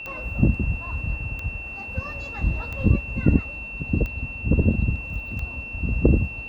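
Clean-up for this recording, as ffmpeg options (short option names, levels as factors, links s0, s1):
-af "adeclick=t=4,bandreject=f=2700:w=30"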